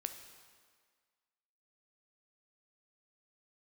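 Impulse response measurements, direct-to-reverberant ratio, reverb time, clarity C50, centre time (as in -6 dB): 6.5 dB, 1.7 s, 8.5 dB, 24 ms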